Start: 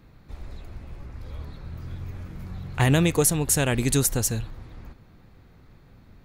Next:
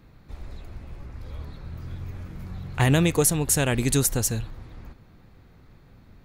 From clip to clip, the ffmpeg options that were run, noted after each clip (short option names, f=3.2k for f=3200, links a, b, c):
-af anull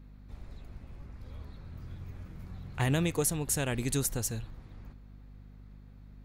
-af "aeval=exprs='val(0)+0.00891*(sin(2*PI*50*n/s)+sin(2*PI*2*50*n/s)/2+sin(2*PI*3*50*n/s)/3+sin(2*PI*4*50*n/s)/4+sin(2*PI*5*50*n/s)/5)':c=same,volume=-8.5dB"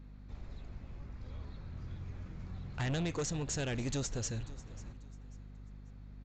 -af "aresample=16000,asoftclip=type=tanh:threshold=-30.5dB,aresample=44100,aecho=1:1:541|1082|1623:0.112|0.0337|0.0101"